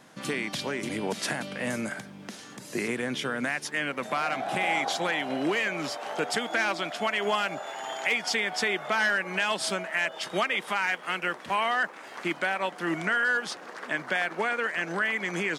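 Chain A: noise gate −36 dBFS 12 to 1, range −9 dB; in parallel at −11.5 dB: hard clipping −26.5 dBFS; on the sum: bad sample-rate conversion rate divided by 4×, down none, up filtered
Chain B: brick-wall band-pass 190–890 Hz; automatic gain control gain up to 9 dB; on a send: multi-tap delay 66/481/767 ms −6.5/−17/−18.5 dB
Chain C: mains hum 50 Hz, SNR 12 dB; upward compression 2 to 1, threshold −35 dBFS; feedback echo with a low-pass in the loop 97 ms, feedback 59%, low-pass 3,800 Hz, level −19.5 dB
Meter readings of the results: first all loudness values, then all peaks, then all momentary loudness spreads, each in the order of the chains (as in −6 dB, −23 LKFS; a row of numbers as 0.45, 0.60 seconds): −27.0, −24.5, −28.5 LKFS; −12.0, −6.5, −12.0 dBFS; 7, 9, 7 LU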